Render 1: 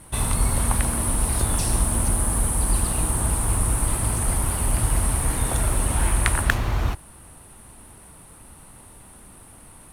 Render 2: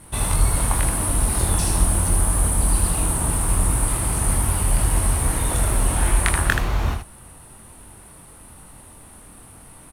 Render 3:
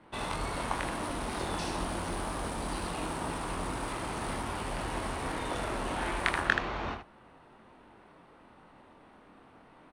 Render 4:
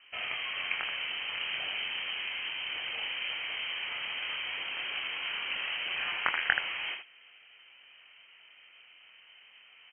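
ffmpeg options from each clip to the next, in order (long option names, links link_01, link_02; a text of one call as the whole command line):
ffmpeg -i in.wav -af "aecho=1:1:23|79:0.562|0.501" out.wav
ffmpeg -i in.wav -filter_complex "[0:a]adynamicsmooth=sensitivity=6:basefreq=3100,acrossover=split=200 5900:gain=0.141 1 0.141[link_01][link_02][link_03];[link_01][link_02][link_03]amix=inputs=3:normalize=0,volume=-5dB" out.wav
ffmpeg -i in.wav -af "highpass=frequency=99:width=0.5412,highpass=frequency=99:width=1.3066,lowpass=frequency=2800:width_type=q:width=0.5098,lowpass=frequency=2800:width_type=q:width=0.6013,lowpass=frequency=2800:width_type=q:width=0.9,lowpass=frequency=2800:width_type=q:width=2.563,afreqshift=-3300" out.wav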